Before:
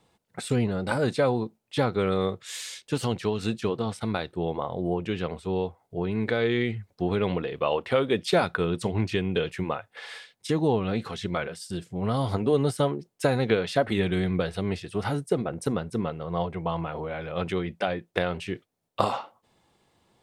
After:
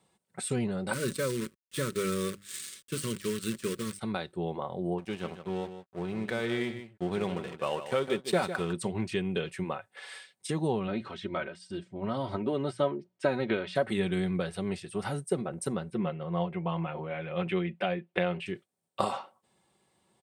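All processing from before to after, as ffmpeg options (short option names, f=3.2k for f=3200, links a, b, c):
-filter_complex "[0:a]asettb=1/sr,asplit=3[a][b][c];[a]atrim=end=0.934[d];[b]atrim=start=0.93:end=3.99,asetpts=PTS-STARTPTS,afade=t=in:d=0.004:c=qsin,afade=t=out:st=3.056:d=0.004:c=qsin,bandreject=f=50:t=h:w=6,bandreject=f=100:t=h:w=6,bandreject=f=150:t=h:w=6,bandreject=f=200:t=h:w=6,bandreject=f=250:t=h:w=6,bandreject=f=300:t=h:w=6,acrusher=bits=6:dc=4:mix=0:aa=0.000001,asuperstop=centerf=770:order=4:qfactor=1.2[e];[c]atrim=start=3.986[f];[d][e]acrossfade=d=0.004:c1=hsin:c2=qsin[g];[g][f]acrossfade=d=0.004:c1=qsin:c2=hsin,asettb=1/sr,asplit=3[h][i][j];[h]atrim=end=4.984[k];[i]atrim=start=4.98:end=8.73,asetpts=PTS-STARTPTS,afade=t=in:d=0.004:c=qsin,afade=t=out:st=3.746:d=0.004:c=qsin,aeval=exprs='sgn(val(0))*max(abs(val(0))-0.0126,0)':c=same,aecho=1:1:154:0.299,atrim=end_sample=165375[l];[j]atrim=start=8.726[m];[k][l]acrossfade=d=0.004:c1=hsin:c2=qsin[n];[n][m]acrossfade=d=0.004:c1=qsin:c2=hsin,asettb=1/sr,asplit=3[o][p][q];[o]atrim=end=10.874[r];[p]atrim=start=10.87:end=13.75,asetpts=PTS-STARTPTS,afade=t=in:d=0.004:c=qsin,afade=t=out:st=2.876:d=0.004:c=qsin,lowpass=3.5k,bandreject=f=60:t=h:w=6,bandreject=f=120:t=h:w=6,bandreject=f=180:t=h:w=6,aecho=1:1:3.2:0.48,atrim=end_sample=127008[s];[q]atrim=start=13.746[t];[r][s]acrossfade=d=0.004:c1=hsin:c2=qsin[u];[u][t]acrossfade=d=0.004:c1=qsin:c2=hsin,asettb=1/sr,asplit=3[v][w][x];[v]atrim=end=15.904[y];[w]atrim=start=15.9:end=18.46,asetpts=PTS-STARTPTS,afade=t=in:d=0.004:c=qsin,afade=t=out:st=2.556:d=0.004:c=qsin,highshelf=f=4.3k:t=q:w=1.5:g=-12.5,aecho=1:1:5.7:0.49,atrim=end_sample=112896[z];[x]atrim=start=18.456[aa];[y][z]acrossfade=d=0.004:c1=hsin:c2=qsin[ab];[ab][aa]acrossfade=d=0.004:c1=qsin:c2=hsin,highpass=73,equalizer=f=8.6k:w=4.1:g=10.5,aecho=1:1:5.3:0.38,volume=-5.5dB"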